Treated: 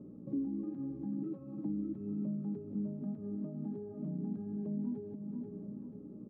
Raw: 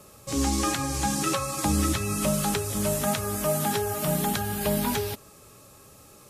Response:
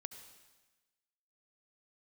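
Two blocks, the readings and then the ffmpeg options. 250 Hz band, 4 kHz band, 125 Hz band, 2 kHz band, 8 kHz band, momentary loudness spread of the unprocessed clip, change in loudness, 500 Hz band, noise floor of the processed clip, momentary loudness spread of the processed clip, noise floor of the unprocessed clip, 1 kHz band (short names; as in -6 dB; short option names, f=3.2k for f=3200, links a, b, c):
-7.0 dB, under -40 dB, -13.0 dB, under -40 dB, under -40 dB, 3 LU, -13.5 dB, -17.5 dB, -49 dBFS, 5 LU, -52 dBFS, under -30 dB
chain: -filter_complex "[0:a]asplit=2[a][b];[b]aecho=0:1:486|972|1458:0.112|0.0482|0.0207[c];[a][c]amix=inputs=2:normalize=0,aeval=exprs='val(0)+0.00316*(sin(2*PI*60*n/s)+sin(2*PI*2*60*n/s)/2+sin(2*PI*3*60*n/s)/3+sin(2*PI*4*60*n/s)/4+sin(2*PI*5*60*n/s)/5)':c=same,acompressor=threshold=-38dB:ratio=10,asuperpass=centerf=240:order=4:qfactor=1.5,volume=8.5dB"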